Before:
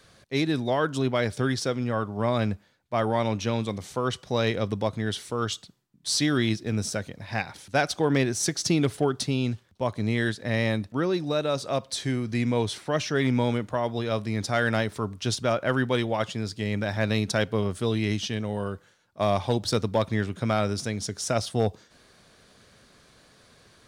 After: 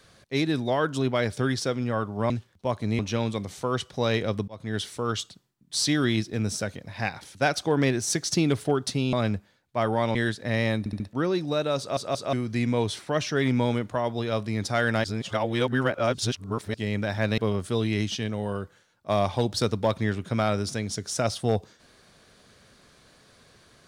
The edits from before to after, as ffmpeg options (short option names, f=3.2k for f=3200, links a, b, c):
-filter_complex "[0:a]asplit=15[a][b][c][d][e][f][g][h][i][j][k][l][m][n][o];[a]atrim=end=2.302[p];[b]atrim=start=9.458:end=10.152[q];[c]atrim=start=3.318:end=4.81,asetpts=PTS-STARTPTS,afade=t=out:st=1.488:d=0.004:c=hsin[r];[d]atrim=start=4.81:end=9.462,asetpts=PTS-STARTPTS,afade=t=in:d=0.29[s];[e]atrim=start=2.298:end=3.322[t];[f]atrim=start=10.148:end=10.862[u];[g]atrim=start=10.788:end=10.862[v];[h]atrim=start=10.788:end=10.862[w];[i]atrim=start=10.788:end=11.762[x];[j]atrim=start=11.578:end=11.762[y];[k]atrim=start=11.578:end=11.762[z];[l]atrim=start=12.118:end=14.832[aa];[m]atrim=start=14.828:end=16.532,asetpts=PTS-STARTPTS,areverse[ab];[n]atrim=start=16.528:end=17.172[ac];[o]atrim=start=17.488[ad];[p][q]acrossfade=d=0.004:c1=hsin:c2=hsin[ae];[r][s]concat=n=2:v=0:a=1[af];[ae][af]acrossfade=d=0.004:c1=hsin:c2=hsin[ag];[ag][t]acrossfade=d=0.004:c1=hsin:c2=hsin[ah];[ah][u]acrossfade=d=0.004:c1=hsin:c2=hsin[ai];[ai][v]acrossfade=d=0.004:c1=hsin:c2=hsin[aj];[aj][w]acrossfade=d=0.004:c1=hsin:c2=hsin[ak];[ak][x]acrossfade=d=0.004:c1=hsin:c2=hsin[al];[al][y]acrossfade=d=0.004:c1=hsin:c2=hsin[am];[am][z]acrossfade=d=0.004:c1=hsin:c2=hsin[an];[an][aa]acrossfade=d=0.004:c1=hsin:c2=hsin[ao];[ao][ab]acrossfade=d=0.004:c1=hsin:c2=hsin[ap];[ap][ac]acrossfade=d=0.004:c1=hsin:c2=hsin[aq];[aq][ad]acrossfade=d=0.004:c1=hsin:c2=hsin"